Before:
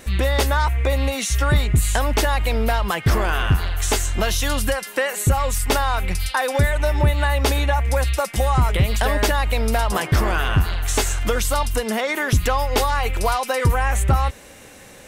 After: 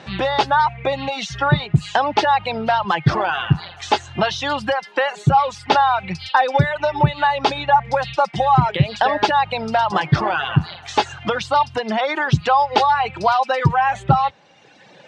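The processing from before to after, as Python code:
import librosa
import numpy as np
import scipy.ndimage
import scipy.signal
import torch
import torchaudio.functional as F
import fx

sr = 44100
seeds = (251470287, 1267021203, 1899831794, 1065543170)

y = fx.dereverb_blind(x, sr, rt60_s=1.6)
y = fx.cabinet(y, sr, low_hz=120.0, low_slope=24, high_hz=4500.0, hz=(150.0, 250.0, 450.0, 830.0, 2100.0), db=(7, -7, -5, 8, -5))
y = y * librosa.db_to_amplitude(4.0)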